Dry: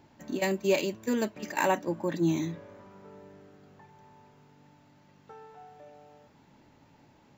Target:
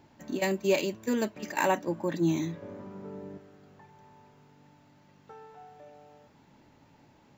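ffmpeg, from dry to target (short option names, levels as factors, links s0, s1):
-filter_complex "[0:a]asettb=1/sr,asplit=3[s0][s1][s2];[s0]atrim=end=2.624[s3];[s1]atrim=start=2.62:end=3.38,asetpts=PTS-STARTPTS,afade=t=in:d=0.004:c=qsin,afade=t=out:st=0.756:d=0.004:c=qsin,equalizer=f=230:t=o:w=2.7:g=11[s4];[s2]atrim=start=3.376[s5];[s3][s4]acrossfade=d=0.004:c1=hsin:c2=qsin[s6];[s6][s5]acrossfade=d=0.004:c1=qsin:c2=hsin"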